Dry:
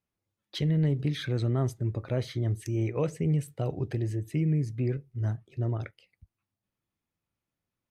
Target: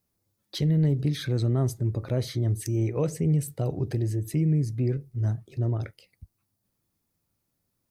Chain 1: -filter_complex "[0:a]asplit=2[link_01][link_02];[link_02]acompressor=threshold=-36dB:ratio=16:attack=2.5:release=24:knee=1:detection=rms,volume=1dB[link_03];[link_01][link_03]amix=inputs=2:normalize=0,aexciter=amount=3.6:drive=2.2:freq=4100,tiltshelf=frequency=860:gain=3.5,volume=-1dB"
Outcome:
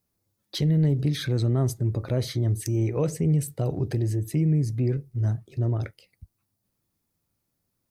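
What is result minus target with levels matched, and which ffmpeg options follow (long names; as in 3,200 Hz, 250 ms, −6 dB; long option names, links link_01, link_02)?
downward compressor: peak gain reduction −9 dB
-filter_complex "[0:a]asplit=2[link_01][link_02];[link_02]acompressor=threshold=-45.5dB:ratio=16:attack=2.5:release=24:knee=1:detection=rms,volume=1dB[link_03];[link_01][link_03]amix=inputs=2:normalize=0,aexciter=amount=3.6:drive=2.2:freq=4100,tiltshelf=frequency=860:gain=3.5,volume=-1dB"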